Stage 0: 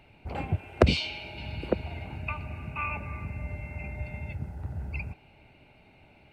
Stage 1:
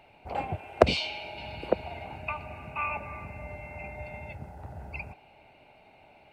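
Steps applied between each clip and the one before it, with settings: FFT filter 100 Hz 0 dB, 330 Hz +5 dB, 730 Hz +15 dB, 1.4 kHz +8 dB; trim -8 dB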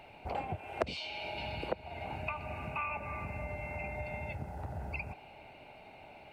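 compression 3:1, threshold -40 dBFS, peak gain reduction 21 dB; trim +3.5 dB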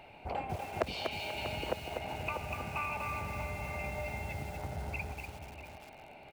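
echo from a far wall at 110 m, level -9 dB; bit-crushed delay 243 ms, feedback 35%, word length 8-bit, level -4.5 dB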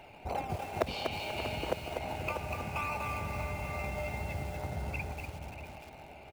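in parallel at -11 dB: decimation with a swept rate 18×, swing 60% 2.3 Hz; on the sum: echo from a far wall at 100 m, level -11 dB

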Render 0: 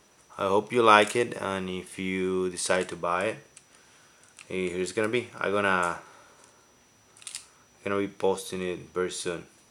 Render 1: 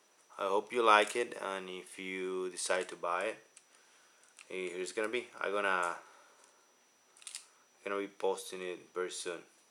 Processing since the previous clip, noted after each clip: high-pass 340 Hz 12 dB/octave; trim -7 dB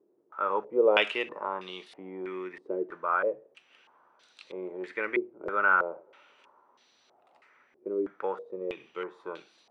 step-sequenced low-pass 3.1 Hz 370–4000 Hz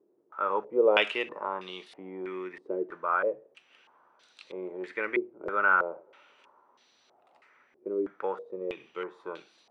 no audible change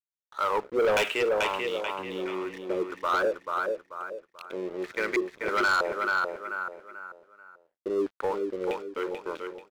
crossover distortion -49.5 dBFS; on a send: feedback delay 437 ms, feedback 34%, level -6 dB; on the sum: saturation -26 dBFS, distortion -8 dB; trim +6 dB

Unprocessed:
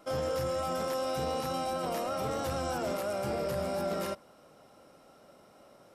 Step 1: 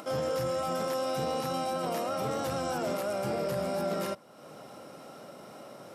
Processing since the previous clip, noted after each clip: high-pass 110 Hz 24 dB/octave; bass shelf 170 Hz +3 dB; upward compressor, threshold -38 dBFS; trim +1 dB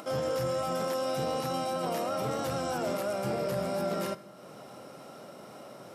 reverberation RT60 1.7 s, pre-delay 4 ms, DRR 14 dB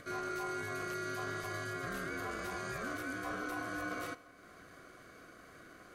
ring modulator 890 Hz; trim -5.5 dB

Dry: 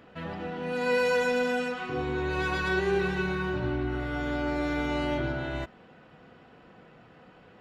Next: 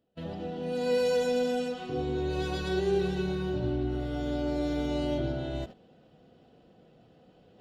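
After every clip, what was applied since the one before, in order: gate -40 dBFS, range -23 dB; reverse; upward compressor, threshold -40 dBFS; reverse; high-order bell 1.5 kHz -12 dB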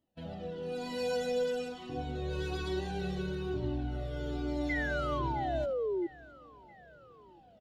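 painted sound fall, 4.69–6.07 s, 330–2100 Hz -25 dBFS; feedback delay 664 ms, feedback 49%, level -23.5 dB; Shepard-style flanger falling 1.1 Hz

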